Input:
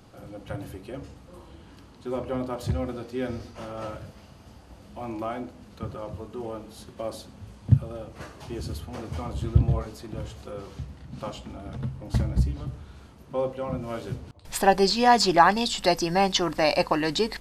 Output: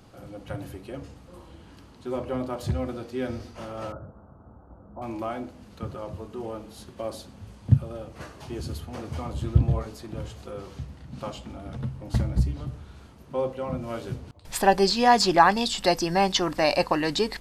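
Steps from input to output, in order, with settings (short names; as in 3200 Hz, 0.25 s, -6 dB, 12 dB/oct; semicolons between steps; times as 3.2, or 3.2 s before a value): 3.92–5.02 elliptic low-pass 1400 Hz, stop band 40 dB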